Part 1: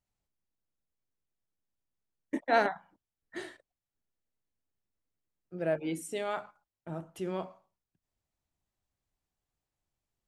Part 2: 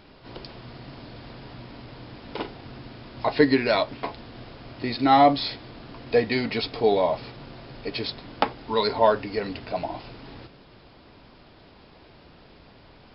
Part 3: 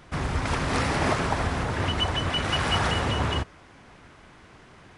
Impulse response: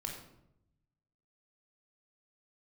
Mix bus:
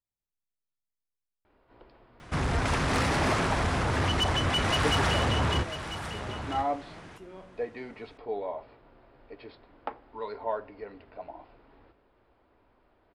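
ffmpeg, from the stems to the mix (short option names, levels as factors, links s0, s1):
-filter_complex "[0:a]volume=0.178,asplit=2[s0][s1];[s1]volume=0.631[s2];[1:a]lowpass=1700,equalizer=f=150:w=1.1:g=-12,adelay=1450,volume=0.237,asplit=2[s3][s4];[s4]volume=0.158[s5];[2:a]asoftclip=type=tanh:threshold=0.0708,adelay=2200,volume=1.26,asplit=2[s6][s7];[s7]volume=0.282[s8];[3:a]atrim=start_sample=2205[s9];[s2][s5]amix=inputs=2:normalize=0[s10];[s10][s9]afir=irnorm=-1:irlink=0[s11];[s8]aecho=0:1:996:1[s12];[s0][s3][s6][s11][s12]amix=inputs=5:normalize=0"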